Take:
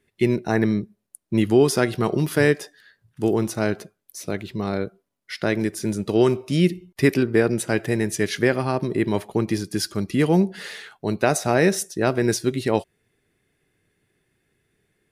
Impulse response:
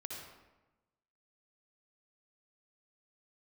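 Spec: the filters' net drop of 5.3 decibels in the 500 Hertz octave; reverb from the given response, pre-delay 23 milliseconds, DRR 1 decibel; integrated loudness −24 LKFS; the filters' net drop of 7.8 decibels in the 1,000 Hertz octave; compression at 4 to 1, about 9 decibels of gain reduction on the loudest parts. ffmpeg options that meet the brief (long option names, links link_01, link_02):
-filter_complex "[0:a]equalizer=frequency=500:width_type=o:gain=-5.5,equalizer=frequency=1000:width_type=o:gain=-9,acompressor=threshold=-26dB:ratio=4,asplit=2[link_01][link_02];[1:a]atrim=start_sample=2205,adelay=23[link_03];[link_02][link_03]afir=irnorm=-1:irlink=0,volume=0.5dB[link_04];[link_01][link_04]amix=inputs=2:normalize=0,volume=5dB"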